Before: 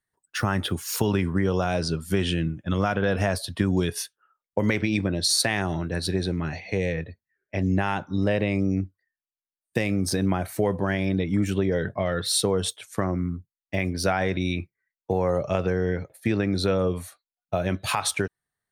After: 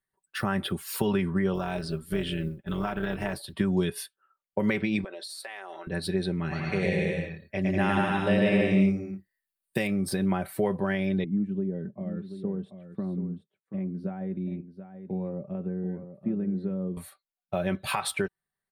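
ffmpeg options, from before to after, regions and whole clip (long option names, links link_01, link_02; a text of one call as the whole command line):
ffmpeg -i in.wav -filter_complex "[0:a]asettb=1/sr,asplit=3[link_01][link_02][link_03];[link_01]atrim=end=1.544[link_04];[link_02]atrim=start=1.54:end=3.53,asetpts=PTS-STARTPTS,afade=type=in:duration=0.004:curve=qsin,afade=type=out:start_time=1.986:duration=0.004:curve=qsin,bandreject=frequency=510:width=5.2,tremolo=f=230:d=0.667,acrusher=bits=9:mode=log:mix=0:aa=0.000001[link_05];[link_03]atrim=start=3.526[link_06];[link_04][link_05]acrossfade=duration=0.004:curve1=hsin:curve2=qsin[link_07];[link_07][link_06]acrossfade=duration=0.004:curve1=qsin:curve2=hsin,asettb=1/sr,asplit=3[link_08][link_09][link_10];[link_08]atrim=end=5.044[link_11];[link_09]atrim=start=5.04:end=5.87,asetpts=PTS-STARTPTS,afade=type=in:duration=0.004:curve=qsin,afade=type=out:start_time=0.826:duration=0.004:curve=qsin,highpass=frequency=450:width=0.5412,highpass=frequency=450:width=1.3066,acompressor=threshold=-33dB:ratio=5:attack=3.2:release=140:knee=1:detection=peak[link_12];[link_10]atrim=start=5.866[link_13];[link_11][link_12]acrossfade=duration=0.004:curve1=hsin:curve2=qsin[link_14];[link_14][link_13]acrossfade=duration=0.004:curve1=qsin:curve2=hsin,asettb=1/sr,asplit=3[link_15][link_16][link_17];[link_15]atrim=end=6.404[link_18];[link_16]atrim=start=6.4:end=9.87,asetpts=PTS-STARTPTS,afade=type=in:duration=0.004:curve=qsin,afade=type=out:start_time=3.466:duration=0.004:curve=qsin,highshelf=frequency=4600:gain=8,aecho=1:1:110|192.5|254.4|300.8|335.6|361.7:0.794|0.631|0.501|0.398|0.316|0.251,atrim=end_sample=153027[link_19];[link_17]atrim=start=9.866[link_20];[link_18][link_19]acrossfade=duration=0.004:curve1=hsin:curve2=qsin[link_21];[link_21][link_20]acrossfade=duration=0.004:curve1=qsin:curve2=hsin,asettb=1/sr,asplit=3[link_22][link_23][link_24];[link_22]atrim=end=11.244[link_25];[link_23]atrim=start=11.24:end=16.97,asetpts=PTS-STARTPTS,afade=type=in:duration=0.004:curve=qsin,afade=type=out:start_time=5.726:duration=0.004:curve=qsin,bandpass=frequency=220:width_type=q:width=1.8,aecho=1:1:733:0.299,atrim=end_sample=252693[link_26];[link_24]atrim=start=16.966[link_27];[link_25][link_26]acrossfade=duration=0.004:curve1=hsin:curve2=qsin[link_28];[link_28][link_27]acrossfade=duration=0.004:curve1=qsin:curve2=hsin,equalizer=frequency=6200:width=2.9:gain=-13.5,aecho=1:1:5.2:0.56,volume=-4dB" out.wav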